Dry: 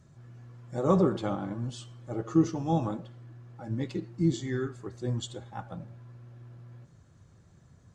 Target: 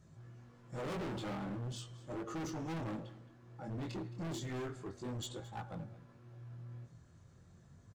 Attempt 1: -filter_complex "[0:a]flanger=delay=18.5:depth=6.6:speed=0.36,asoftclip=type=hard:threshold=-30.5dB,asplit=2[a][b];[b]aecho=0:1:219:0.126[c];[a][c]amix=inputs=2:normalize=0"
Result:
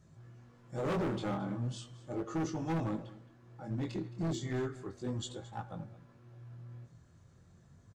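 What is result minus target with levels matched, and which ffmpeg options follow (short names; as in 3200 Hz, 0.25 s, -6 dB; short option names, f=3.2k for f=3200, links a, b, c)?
hard clip: distortion -4 dB
-filter_complex "[0:a]flanger=delay=18.5:depth=6.6:speed=0.36,asoftclip=type=hard:threshold=-38.5dB,asplit=2[a][b];[b]aecho=0:1:219:0.126[c];[a][c]amix=inputs=2:normalize=0"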